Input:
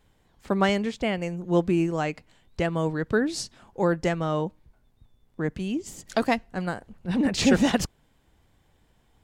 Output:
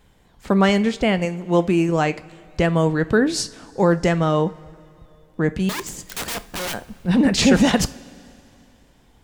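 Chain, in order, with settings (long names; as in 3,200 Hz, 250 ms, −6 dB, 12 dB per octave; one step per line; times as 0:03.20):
0:01.25–0:01.89: low-shelf EQ 250 Hz −8 dB
in parallel at +3 dB: brickwall limiter −16.5 dBFS, peak gain reduction 9.5 dB
0:05.69–0:06.74: on the sum: wrap-around overflow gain 22.5 dB
coupled-rooms reverb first 0.33 s, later 2.8 s, from −18 dB, DRR 12 dB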